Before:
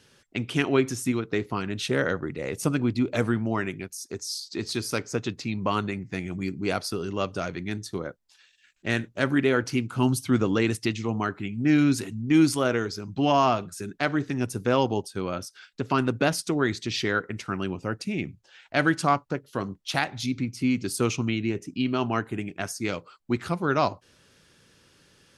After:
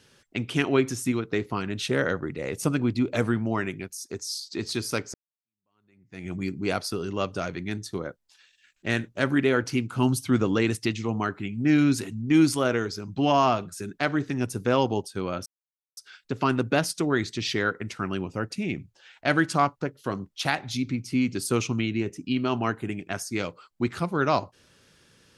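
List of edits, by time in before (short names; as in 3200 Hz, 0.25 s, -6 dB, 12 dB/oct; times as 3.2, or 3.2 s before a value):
5.14–6.28 fade in exponential
15.46 insert silence 0.51 s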